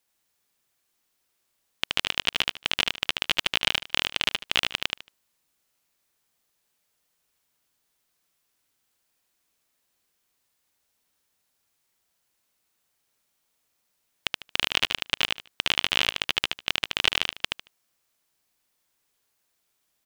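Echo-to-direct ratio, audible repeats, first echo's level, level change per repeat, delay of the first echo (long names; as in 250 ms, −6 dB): −3.0 dB, 3, −3.0 dB, −14.0 dB, 75 ms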